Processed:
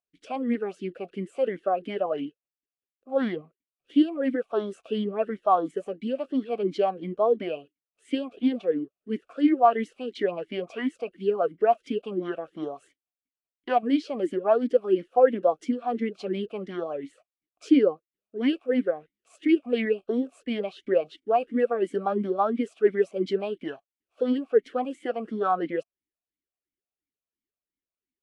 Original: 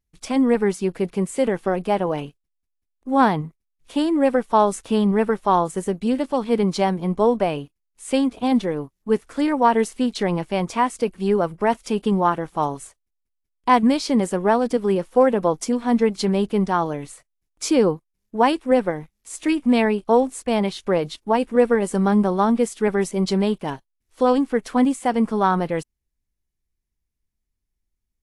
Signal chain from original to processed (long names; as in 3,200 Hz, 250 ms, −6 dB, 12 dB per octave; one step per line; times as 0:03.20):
formant filter swept between two vowels a-i 2.9 Hz
level +5 dB